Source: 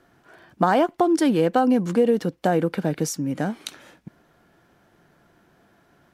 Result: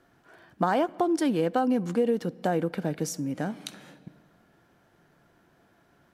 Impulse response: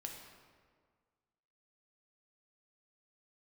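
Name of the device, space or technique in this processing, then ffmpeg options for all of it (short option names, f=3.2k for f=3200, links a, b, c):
compressed reverb return: -filter_complex "[0:a]asplit=2[a][b];[1:a]atrim=start_sample=2205[c];[b][c]afir=irnorm=-1:irlink=0,acompressor=threshold=-32dB:ratio=5,volume=-4.5dB[d];[a][d]amix=inputs=2:normalize=0,volume=-6.5dB"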